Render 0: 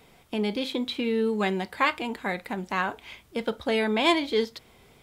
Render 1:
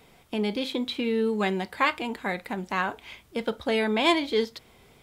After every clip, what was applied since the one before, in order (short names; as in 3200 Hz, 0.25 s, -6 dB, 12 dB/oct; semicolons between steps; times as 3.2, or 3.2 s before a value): nothing audible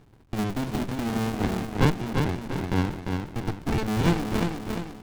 cycle switcher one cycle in 2, muted; feedback echo 0.348 s, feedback 49%, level -4.5 dB; running maximum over 65 samples; gain +2 dB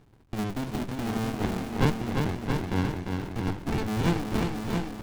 echo 0.674 s -6 dB; gain -3 dB